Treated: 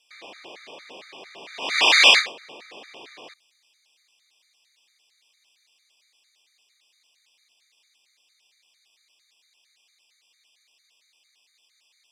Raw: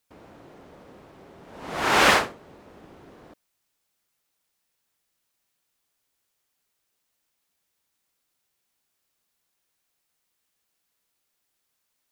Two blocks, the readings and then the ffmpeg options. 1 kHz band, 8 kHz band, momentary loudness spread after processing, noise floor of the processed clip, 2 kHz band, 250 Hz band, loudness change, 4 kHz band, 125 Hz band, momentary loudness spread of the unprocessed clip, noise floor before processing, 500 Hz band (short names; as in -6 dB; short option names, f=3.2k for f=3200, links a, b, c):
-4.0 dB, +3.0 dB, 19 LU, -67 dBFS, +5.0 dB, -9.5 dB, +5.0 dB, +11.0 dB, under -15 dB, 18 LU, -78 dBFS, -4.0 dB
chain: -af "bandreject=f=1.4k:w=10,acompressor=threshold=-28dB:ratio=2.5,aexciter=amount=10.8:drive=1.3:freq=2.2k,apsyclip=7dB,highpass=460,lowpass=3.1k,afftfilt=real='re*gt(sin(2*PI*4.4*pts/sr)*(1-2*mod(floor(b*sr/1024/1200),2)),0)':imag='im*gt(sin(2*PI*4.4*pts/sr)*(1-2*mod(floor(b*sr/1024/1200),2)),0)':win_size=1024:overlap=0.75,volume=1.5dB"